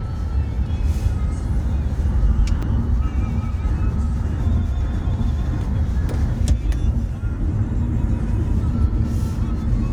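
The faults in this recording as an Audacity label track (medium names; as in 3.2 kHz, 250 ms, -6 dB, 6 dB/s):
2.620000	2.630000	dropout 5.5 ms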